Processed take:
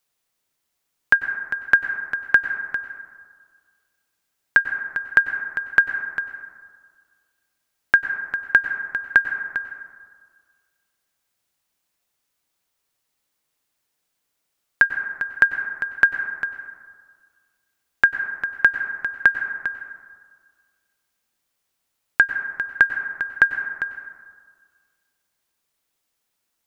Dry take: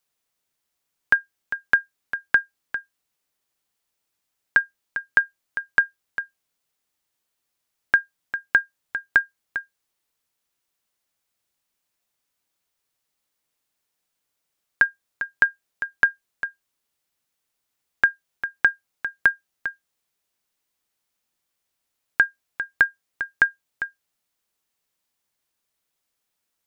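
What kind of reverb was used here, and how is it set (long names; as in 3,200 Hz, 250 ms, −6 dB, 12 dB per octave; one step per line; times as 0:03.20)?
dense smooth reverb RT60 1.8 s, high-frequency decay 0.3×, pre-delay 85 ms, DRR 8 dB
level +2.5 dB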